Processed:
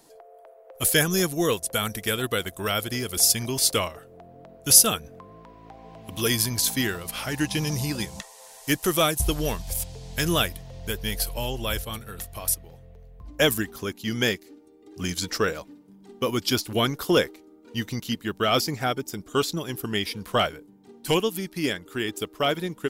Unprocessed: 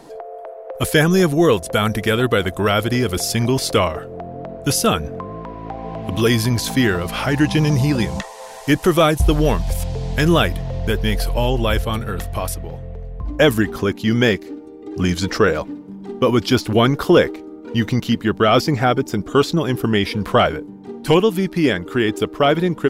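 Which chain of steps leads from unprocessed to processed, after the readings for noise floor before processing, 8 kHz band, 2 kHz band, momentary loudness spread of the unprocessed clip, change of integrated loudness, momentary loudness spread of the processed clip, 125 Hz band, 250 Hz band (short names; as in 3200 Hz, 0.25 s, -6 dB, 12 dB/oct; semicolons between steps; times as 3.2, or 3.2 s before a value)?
-36 dBFS, +5.0 dB, -7.0 dB, 16 LU, -6.5 dB, 12 LU, -11.5 dB, -11.0 dB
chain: pre-emphasis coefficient 0.8; upward expander 1.5:1, over -39 dBFS; gain +7.5 dB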